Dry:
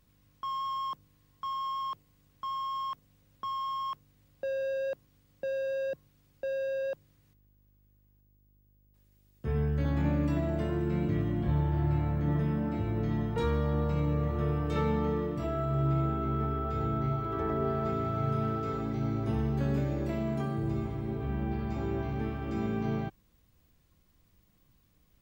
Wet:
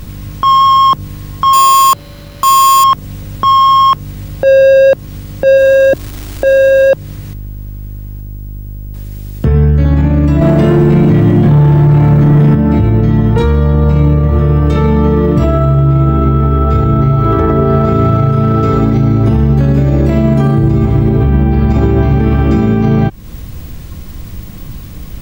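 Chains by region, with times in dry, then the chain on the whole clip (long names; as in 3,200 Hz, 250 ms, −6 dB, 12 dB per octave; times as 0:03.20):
0:01.53–0:02.84: low-shelf EQ 330 Hz −7 dB + sample-rate reduction 8,100 Hz
0:05.57–0:06.89: parametric band 2,500 Hz −7.5 dB 0.92 octaves + comb filter 3 ms, depth 56% + surface crackle 580 per second −54 dBFS
0:10.41–0:12.55: high-pass filter 110 Hz 24 dB per octave + leveller curve on the samples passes 2
whole clip: low-shelf EQ 260 Hz +8 dB; downward compressor, threshold −39 dBFS; boost into a limiter +35.5 dB; level −1 dB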